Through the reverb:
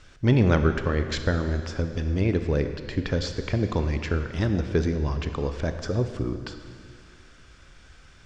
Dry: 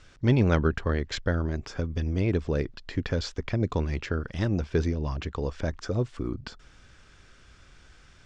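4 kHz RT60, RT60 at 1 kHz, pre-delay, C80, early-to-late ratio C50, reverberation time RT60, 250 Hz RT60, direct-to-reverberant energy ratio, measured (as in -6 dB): 2.1 s, 2.2 s, 23 ms, 9.5 dB, 8.5 dB, 2.2 s, 2.2 s, 7.5 dB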